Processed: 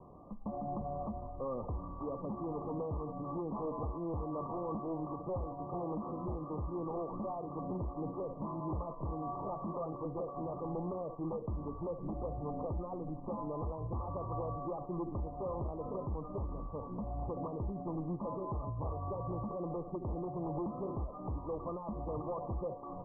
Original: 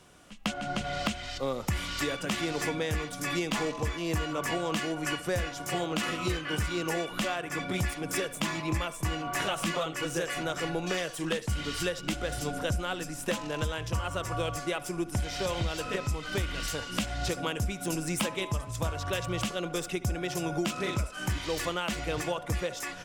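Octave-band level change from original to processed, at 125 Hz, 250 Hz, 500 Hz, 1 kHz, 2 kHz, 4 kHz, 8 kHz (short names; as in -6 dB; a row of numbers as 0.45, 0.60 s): -6.5 dB, -6.0 dB, -6.0 dB, -6.0 dB, under -40 dB, under -40 dB, under -40 dB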